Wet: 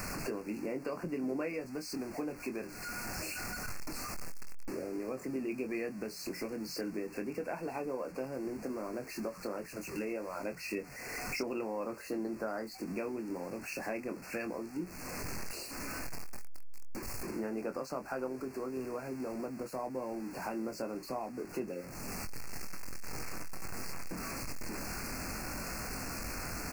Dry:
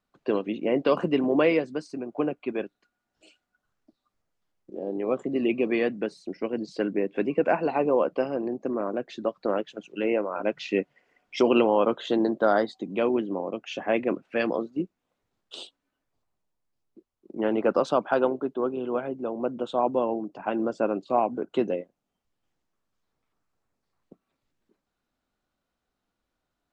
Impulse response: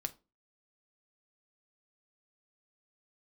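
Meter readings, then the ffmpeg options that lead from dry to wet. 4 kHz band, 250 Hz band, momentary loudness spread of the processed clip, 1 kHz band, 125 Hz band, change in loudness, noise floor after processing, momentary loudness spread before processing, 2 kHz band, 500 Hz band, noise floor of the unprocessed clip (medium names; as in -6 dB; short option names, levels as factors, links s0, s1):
-5.5 dB, -10.5 dB, 5 LU, -12.5 dB, -4.5 dB, -12.5 dB, -48 dBFS, 11 LU, -6.5 dB, -13.5 dB, -83 dBFS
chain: -filter_complex "[0:a]aeval=exprs='val(0)+0.5*0.0188*sgn(val(0))':c=same,acompressor=threshold=0.00891:ratio=3,asuperstop=centerf=3400:order=12:qfactor=2.1,equalizer=f=620:w=0.49:g=-5,asplit=2[s0][s1];[s1]adelay=23,volume=0.422[s2];[s0][s2]amix=inputs=2:normalize=0,volume=1.58"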